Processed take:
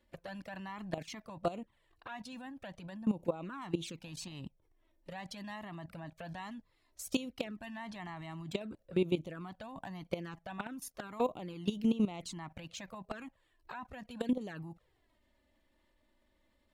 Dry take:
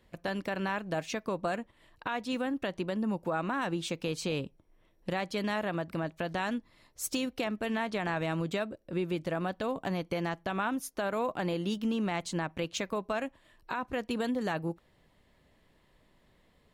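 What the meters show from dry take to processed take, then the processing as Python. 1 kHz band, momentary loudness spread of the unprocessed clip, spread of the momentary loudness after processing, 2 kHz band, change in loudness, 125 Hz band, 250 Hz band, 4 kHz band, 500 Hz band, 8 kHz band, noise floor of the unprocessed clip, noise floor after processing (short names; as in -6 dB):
-9.5 dB, 5 LU, 13 LU, -11.5 dB, -6.0 dB, -6.0 dB, -4.0 dB, -7.0 dB, -7.0 dB, -7.0 dB, -67 dBFS, -74 dBFS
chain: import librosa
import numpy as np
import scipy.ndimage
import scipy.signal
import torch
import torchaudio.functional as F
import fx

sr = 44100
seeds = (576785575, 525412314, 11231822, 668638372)

y = fx.level_steps(x, sr, step_db=15)
y = fx.env_flanger(y, sr, rest_ms=3.5, full_db=-35.0)
y = F.gain(torch.from_numpy(y), 4.0).numpy()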